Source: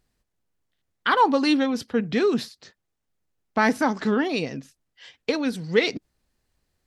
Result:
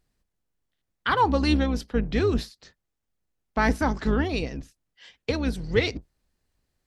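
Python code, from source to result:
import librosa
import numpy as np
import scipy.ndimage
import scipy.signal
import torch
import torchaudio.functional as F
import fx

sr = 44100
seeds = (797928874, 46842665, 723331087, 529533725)

y = fx.octave_divider(x, sr, octaves=2, level_db=1.0)
y = y * librosa.db_to_amplitude(-3.0)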